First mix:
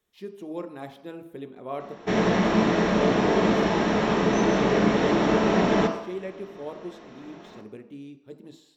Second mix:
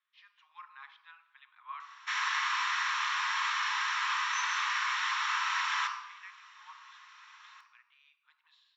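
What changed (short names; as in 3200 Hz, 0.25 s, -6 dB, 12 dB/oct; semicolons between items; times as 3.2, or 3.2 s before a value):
speech: add Gaussian blur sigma 2.4 samples; master: add steep high-pass 1000 Hz 72 dB/oct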